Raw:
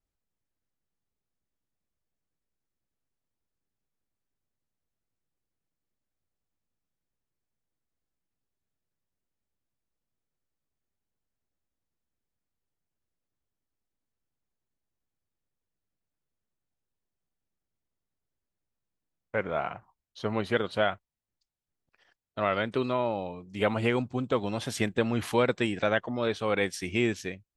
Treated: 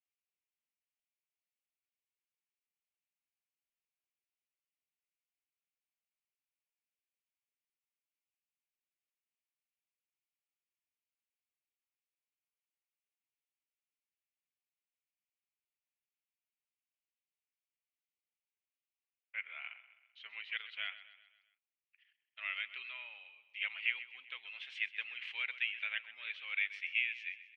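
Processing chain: Butterworth band-pass 2.5 kHz, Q 2.6; on a send: feedback delay 129 ms, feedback 51%, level -15 dB; on the sum: trim +1 dB

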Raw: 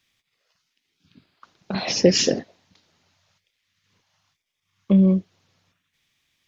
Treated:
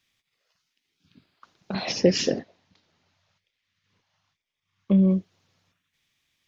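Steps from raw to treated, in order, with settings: 1.92–5.11 s: distance through air 79 m; trim -3 dB

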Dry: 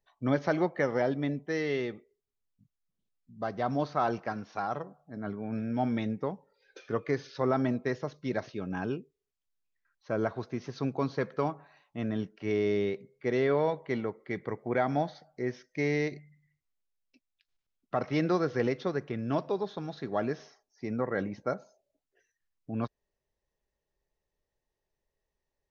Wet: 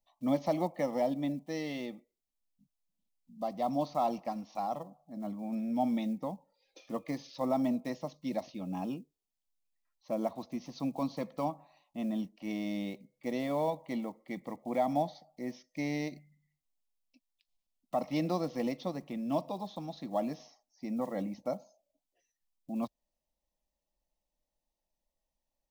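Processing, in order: block-companded coder 7-bit; static phaser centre 410 Hz, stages 6

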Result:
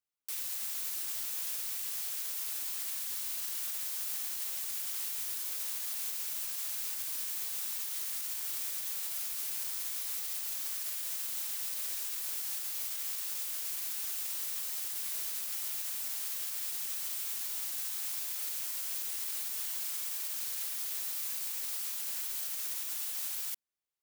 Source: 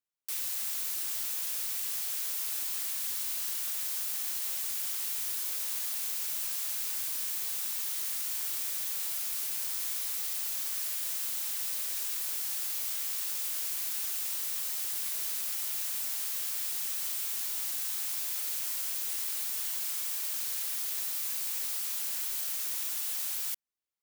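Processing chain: peak limiter -25 dBFS, peak gain reduction 4.5 dB; trim -1.5 dB

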